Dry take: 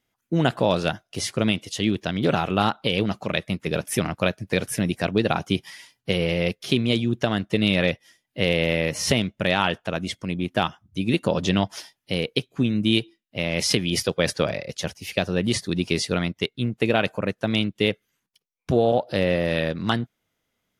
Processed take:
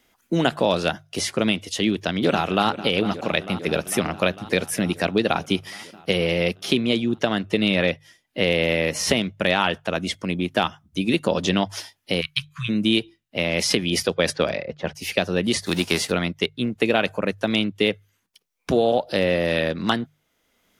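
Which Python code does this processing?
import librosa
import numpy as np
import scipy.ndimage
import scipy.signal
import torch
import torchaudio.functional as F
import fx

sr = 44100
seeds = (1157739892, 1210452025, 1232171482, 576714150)

y = fx.echo_throw(x, sr, start_s=1.87, length_s=0.81, ms=450, feedback_pct=75, wet_db=-14.5)
y = fx.high_shelf(y, sr, hz=5300.0, db=-4.5, at=(6.79, 8.49))
y = fx.brickwall_bandstop(y, sr, low_hz=160.0, high_hz=1000.0, at=(12.2, 12.68), fade=0.02)
y = fx.env_lowpass(y, sr, base_hz=330.0, full_db=-18.0, at=(14.12, 14.94), fade=0.02)
y = fx.envelope_flatten(y, sr, power=0.6, at=(15.65, 16.1), fade=0.02)
y = fx.peak_eq(y, sr, hz=120.0, db=-9.0, octaves=0.79)
y = fx.hum_notches(y, sr, base_hz=50, count=3)
y = fx.band_squash(y, sr, depth_pct=40)
y = F.gain(torch.from_numpy(y), 2.0).numpy()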